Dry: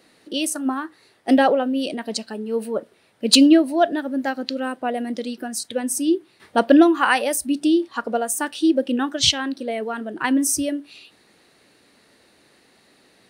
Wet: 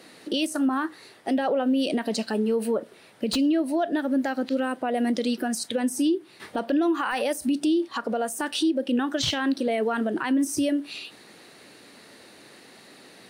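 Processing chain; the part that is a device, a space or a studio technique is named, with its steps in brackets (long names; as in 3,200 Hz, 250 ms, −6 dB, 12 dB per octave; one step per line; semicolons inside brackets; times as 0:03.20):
podcast mastering chain (high-pass filter 110 Hz; de-essing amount 60%; downward compressor 3 to 1, threshold −27 dBFS, peak gain reduction 13.5 dB; brickwall limiter −23.5 dBFS, peak gain reduction 10.5 dB; level +7.5 dB; MP3 96 kbit/s 44,100 Hz)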